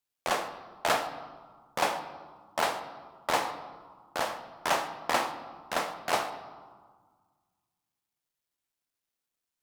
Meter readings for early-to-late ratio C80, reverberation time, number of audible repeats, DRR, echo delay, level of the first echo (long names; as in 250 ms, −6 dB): 11.0 dB, 1.6 s, no echo audible, 7.5 dB, no echo audible, no echo audible